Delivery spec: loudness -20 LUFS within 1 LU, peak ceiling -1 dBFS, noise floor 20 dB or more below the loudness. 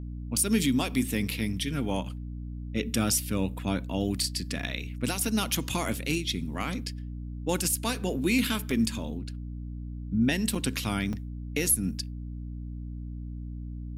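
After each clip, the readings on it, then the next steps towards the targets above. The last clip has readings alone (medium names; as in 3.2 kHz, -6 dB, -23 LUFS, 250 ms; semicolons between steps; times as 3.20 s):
dropouts 3; longest dropout 4.1 ms; hum 60 Hz; highest harmonic 300 Hz; hum level -34 dBFS; loudness -29.5 LUFS; peak level -13.5 dBFS; loudness target -20.0 LUFS
-> interpolate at 8.71/10.55/11.13 s, 4.1 ms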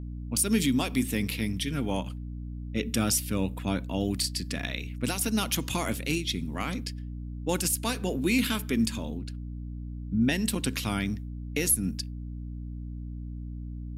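dropouts 0; hum 60 Hz; highest harmonic 300 Hz; hum level -34 dBFS
-> hum notches 60/120/180/240/300 Hz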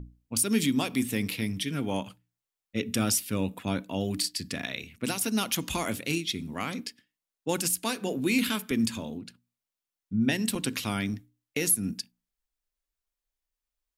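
hum not found; loudness -29.5 LUFS; peak level -13.0 dBFS; loudness target -20.0 LUFS
-> trim +9.5 dB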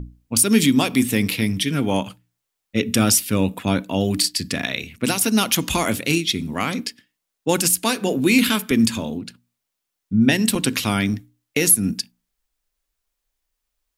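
loudness -20.0 LUFS; peak level -3.5 dBFS; noise floor -80 dBFS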